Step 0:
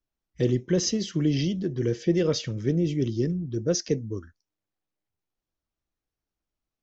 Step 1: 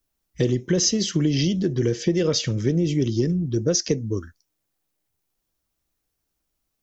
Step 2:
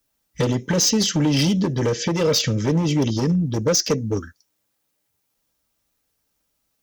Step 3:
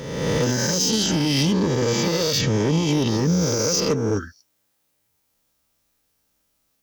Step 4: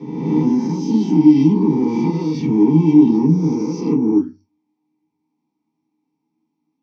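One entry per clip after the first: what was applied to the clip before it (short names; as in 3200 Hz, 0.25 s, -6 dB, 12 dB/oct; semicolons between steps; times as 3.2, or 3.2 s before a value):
high shelf 6300 Hz +11 dB; compressor, threshold -24 dBFS, peak gain reduction 7.5 dB; gain +7 dB
low shelf 180 Hz -7 dB; hard clip -21 dBFS, distortion -11 dB; notch comb 360 Hz; gain +7.5 dB
spectral swells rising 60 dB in 1.30 s; limiter -12.5 dBFS, peak gain reduction 9.5 dB
vowel filter u; reverb RT60 0.20 s, pre-delay 3 ms, DRR -6 dB; gain -4 dB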